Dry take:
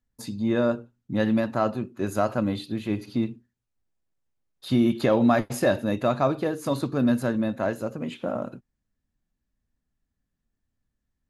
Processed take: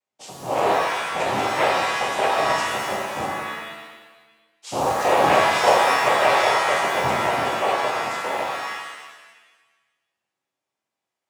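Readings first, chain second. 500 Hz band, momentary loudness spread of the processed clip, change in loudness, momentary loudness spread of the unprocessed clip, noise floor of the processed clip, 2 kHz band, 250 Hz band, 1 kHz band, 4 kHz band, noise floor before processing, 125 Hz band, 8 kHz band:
+4.0 dB, 14 LU, +5.0 dB, 10 LU, -85 dBFS, +13.5 dB, -10.0 dB, +13.0 dB, +13.0 dB, -82 dBFS, -7.0 dB, +11.5 dB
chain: noise-vocoded speech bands 4; resonant low shelf 350 Hz -13.5 dB, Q 1.5; pitch-shifted reverb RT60 1.2 s, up +7 st, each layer -2 dB, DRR -1 dB

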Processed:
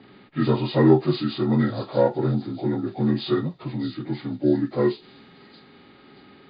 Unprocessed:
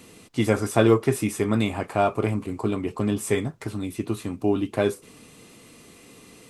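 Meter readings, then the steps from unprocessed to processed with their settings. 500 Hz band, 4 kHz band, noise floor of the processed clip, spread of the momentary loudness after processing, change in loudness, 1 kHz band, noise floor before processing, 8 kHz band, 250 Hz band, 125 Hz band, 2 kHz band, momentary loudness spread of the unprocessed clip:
+0.5 dB, +2.0 dB, -51 dBFS, 12 LU, +1.5 dB, -2.0 dB, -50 dBFS, under -40 dB, +2.5 dB, +2.5 dB, -4.5 dB, 11 LU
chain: frequency axis rescaled in octaves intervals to 77%; band-stop 1.5 kHz, Q 7; harmonic-percussive split harmonic +5 dB; level-controlled noise filter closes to 2.3 kHz, open at -14.5 dBFS; on a send: feedback echo behind a high-pass 629 ms, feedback 35%, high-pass 4.8 kHz, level -5 dB; on the sum: trim -1 dB

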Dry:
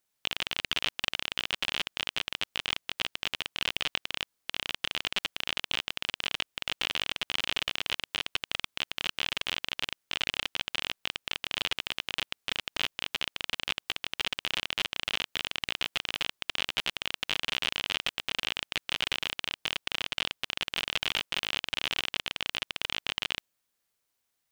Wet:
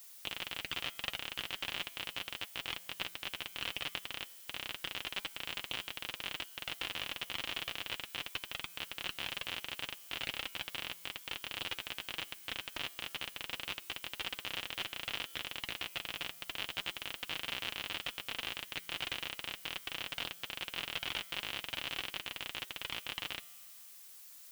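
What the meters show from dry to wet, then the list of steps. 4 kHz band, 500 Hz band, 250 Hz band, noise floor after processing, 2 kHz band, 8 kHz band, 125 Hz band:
-8.5 dB, -6.5 dB, -6.0 dB, -54 dBFS, -7.5 dB, -6.0 dB, -5.0 dB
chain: treble shelf 3.8 kHz -6 dB; comb of notches 210 Hz; added noise blue -49 dBFS; feedback comb 170 Hz, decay 1.9 s, mix 50%; trim +1 dB

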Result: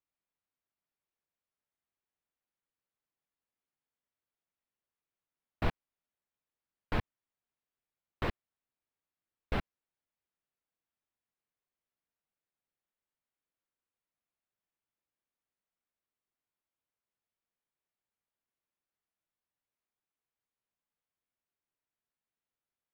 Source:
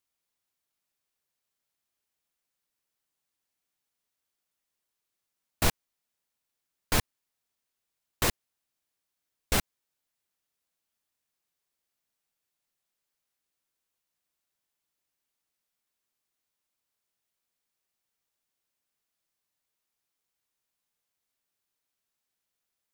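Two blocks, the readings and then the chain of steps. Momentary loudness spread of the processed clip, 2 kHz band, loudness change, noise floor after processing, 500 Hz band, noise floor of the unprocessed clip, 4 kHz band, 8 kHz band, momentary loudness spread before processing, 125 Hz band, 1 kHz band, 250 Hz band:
6 LU, -8.0 dB, -8.5 dB, under -85 dBFS, -5.0 dB, -85 dBFS, -14.5 dB, -32.0 dB, 0 LU, -4.0 dB, -6.0 dB, -4.5 dB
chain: distance through air 410 m; trim -4 dB

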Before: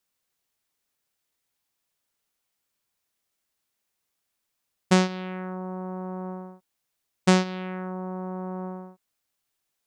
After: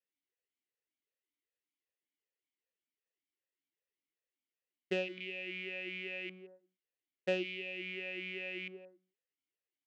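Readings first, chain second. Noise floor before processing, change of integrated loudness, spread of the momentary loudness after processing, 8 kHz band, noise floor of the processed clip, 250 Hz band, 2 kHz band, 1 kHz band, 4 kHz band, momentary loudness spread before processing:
-80 dBFS, -11.0 dB, 10 LU, under -25 dB, under -85 dBFS, -19.0 dB, -4.0 dB, -24.5 dB, -8.5 dB, 16 LU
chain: rattle on loud lows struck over -34 dBFS, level -19 dBFS; delay 171 ms -22.5 dB; talking filter e-i 2.6 Hz; trim -1 dB

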